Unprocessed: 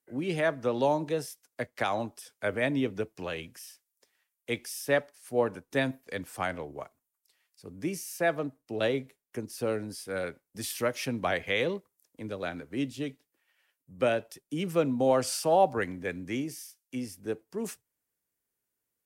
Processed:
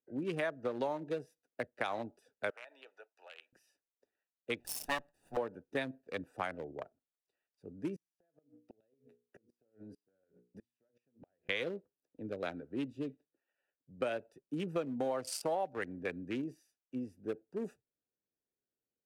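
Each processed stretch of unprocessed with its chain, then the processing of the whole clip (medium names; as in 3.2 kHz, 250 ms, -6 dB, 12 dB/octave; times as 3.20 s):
2.50–3.53 s: high-pass 840 Hz 24 dB/octave + compression, threshold -36 dBFS
4.60–5.37 s: comb filter that takes the minimum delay 1.1 ms + treble shelf 4.7 kHz +8.5 dB
7.96–11.49 s: hum notches 60/120/180/240/300/360/420/480 Hz + compression 10:1, threshold -41 dBFS + inverted gate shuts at -36 dBFS, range -29 dB
whole clip: local Wiener filter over 41 samples; bass shelf 200 Hz -11.5 dB; compression 5:1, threshold -34 dBFS; trim +1.5 dB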